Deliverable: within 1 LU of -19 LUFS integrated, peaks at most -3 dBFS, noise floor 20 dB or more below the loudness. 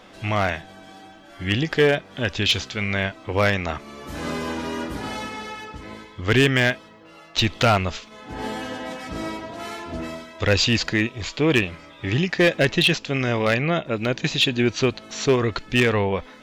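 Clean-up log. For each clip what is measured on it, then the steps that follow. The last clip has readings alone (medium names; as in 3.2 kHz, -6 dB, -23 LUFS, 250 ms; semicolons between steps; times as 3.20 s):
clipped samples 0.3%; clipping level -10.5 dBFS; loudness -22.5 LUFS; peak level -10.5 dBFS; loudness target -19.0 LUFS
-> clip repair -10.5 dBFS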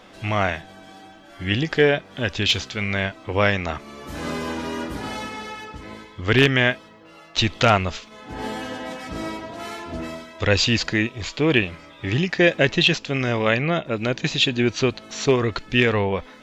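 clipped samples 0.0%; loudness -22.0 LUFS; peak level -1.5 dBFS; loudness target -19.0 LUFS
-> trim +3 dB; peak limiter -3 dBFS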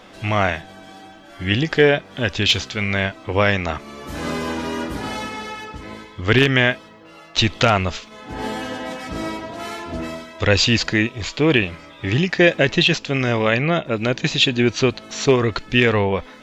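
loudness -19.5 LUFS; peak level -3.0 dBFS; noise floor -44 dBFS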